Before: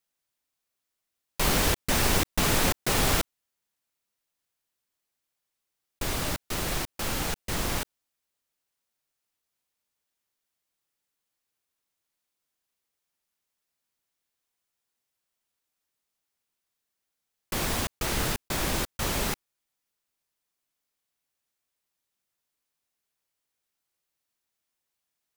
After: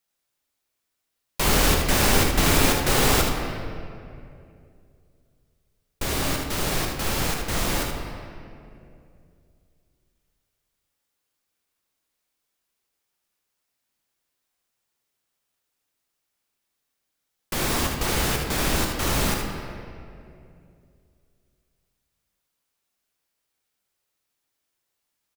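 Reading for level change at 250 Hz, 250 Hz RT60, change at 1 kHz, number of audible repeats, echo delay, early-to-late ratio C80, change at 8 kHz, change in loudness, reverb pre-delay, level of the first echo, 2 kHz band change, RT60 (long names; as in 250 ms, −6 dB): +6.0 dB, 3.0 s, +5.0 dB, 1, 76 ms, 5.0 dB, +4.0 dB, +4.5 dB, 15 ms, −6.5 dB, +5.0 dB, 2.6 s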